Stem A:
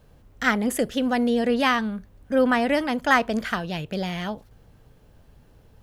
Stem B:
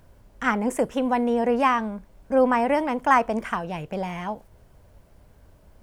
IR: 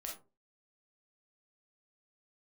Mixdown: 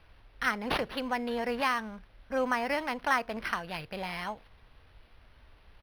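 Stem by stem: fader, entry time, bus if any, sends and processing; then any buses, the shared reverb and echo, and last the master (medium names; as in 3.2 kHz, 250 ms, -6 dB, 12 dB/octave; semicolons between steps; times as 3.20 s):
-11.5 dB, 0.00 s, no send, bass shelf 220 Hz -7 dB
+2.5 dB, 0.3 ms, no send, amplifier tone stack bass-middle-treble 10-0-10; compression, threshold -33 dBFS, peak gain reduction 12 dB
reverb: none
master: treble shelf 4.2 kHz +7.5 dB; decimation joined by straight lines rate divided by 6×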